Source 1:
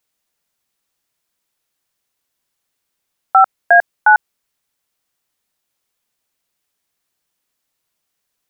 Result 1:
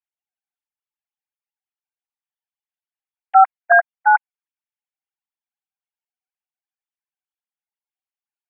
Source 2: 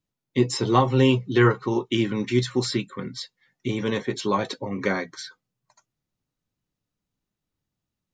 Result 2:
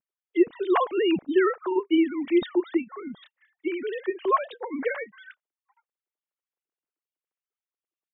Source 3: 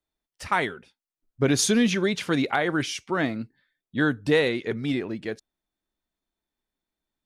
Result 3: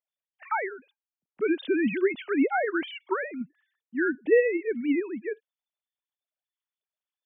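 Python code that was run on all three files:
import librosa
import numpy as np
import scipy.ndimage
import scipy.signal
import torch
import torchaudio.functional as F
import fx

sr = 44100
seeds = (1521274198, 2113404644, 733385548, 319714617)

y = fx.sine_speech(x, sr)
y = y * 10.0 ** (-2.0 / 20.0)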